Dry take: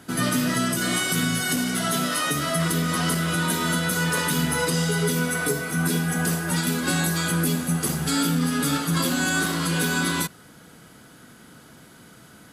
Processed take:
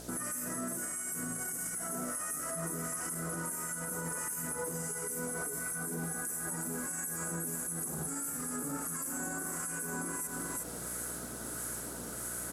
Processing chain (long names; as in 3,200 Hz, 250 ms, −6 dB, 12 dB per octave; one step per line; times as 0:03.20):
two-band tremolo in antiphase 1.5 Hz, depth 70%, crossover 1,200 Hz
reversed playback
upward compression, threshold −32 dBFS
reversed playback
Butterworth band-reject 3,800 Hz, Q 0.55
parametric band 920 Hz −3.5 dB 2.6 octaves
single-tap delay 360 ms −9 dB
in parallel at −9 dB: bit-depth reduction 8 bits, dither triangular
on the sum: low-pass filter 10,000 Hz 12 dB per octave
bass and treble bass −12 dB, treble +12 dB
hum with harmonics 60 Hz, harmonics 11, −50 dBFS −2 dB per octave
downward compressor, threshold −28 dBFS, peak gain reduction 11.5 dB
brickwall limiter −28 dBFS, peak gain reduction 12 dB